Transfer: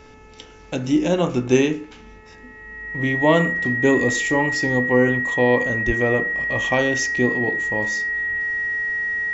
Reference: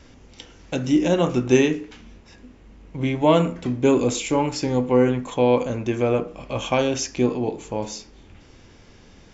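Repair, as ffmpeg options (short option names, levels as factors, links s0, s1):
-filter_complex "[0:a]bandreject=f=434:t=h:w=4,bandreject=f=868:t=h:w=4,bandreject=f=1302:t=h:w=4,bandreject=f=1736:t=h:w=4,bandreject=f=2170:t=h:w=4,bandreject=f=2604:t=h:w=4,bandreject=f=1900:w=30,asplit=3[s0][s1][s2];[s0]afade=t=out:st=5.86:d=0.02[s3];[s1]highpass=f=140:w=0.5412,highpass=f=140:w=1.3066,afade=t=in:st=5.86:d=0.02,afade=t=out:st=5.98:d=0.02[s4];[s2]afade=t=in:st=5.98:d=0.02[s5];[s3][s4][s5]amix=inputs=3:normalize=0"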